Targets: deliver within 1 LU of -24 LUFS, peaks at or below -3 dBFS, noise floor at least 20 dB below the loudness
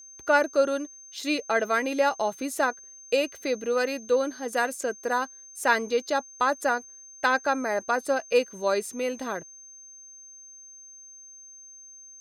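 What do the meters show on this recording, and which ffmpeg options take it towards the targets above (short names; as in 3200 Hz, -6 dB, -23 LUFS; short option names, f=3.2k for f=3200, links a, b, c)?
steady tone 6300 Hz; tone level -45 dBFS; loudness -26.5 LUFS; peak -8.0 dBFS; loudness target -24.0 LUFS
-> -af "bandreject=f=6.3k:w=30"
-af "volume=2.5dB"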